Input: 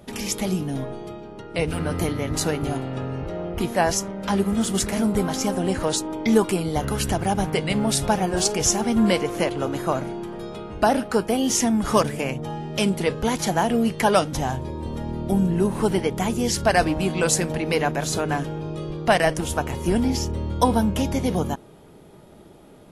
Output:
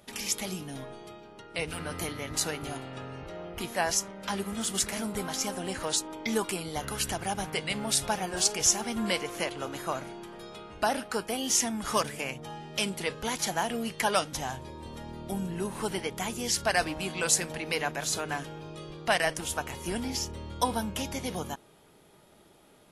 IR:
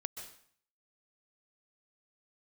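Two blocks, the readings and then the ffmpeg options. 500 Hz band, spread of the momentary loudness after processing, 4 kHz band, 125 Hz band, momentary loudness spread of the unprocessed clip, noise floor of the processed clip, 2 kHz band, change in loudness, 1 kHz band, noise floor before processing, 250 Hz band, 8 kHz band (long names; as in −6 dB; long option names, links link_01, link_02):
−10.5 dB, 15 LU, −2.5 dB, −13.5 dB, 10 LU, −58 dBFS, −4.0 dB, −7.5 dB, −7.5 dB, −47 dBFS, −13.0 dB, −2.0 dB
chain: -af "tiltshelf=frequency=820:gain=-6,volume=-8dB"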